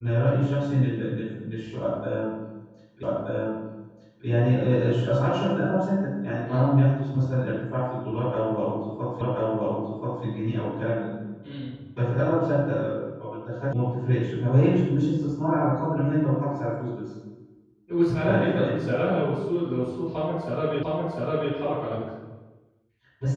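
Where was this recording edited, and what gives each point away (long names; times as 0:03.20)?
0:03.03: the same again, the last 1.23 s
0:09.21: the same again, the last 1.03 s
0:13.73: cut off before it has died away
0:20.83: the same again, the last 0.7 s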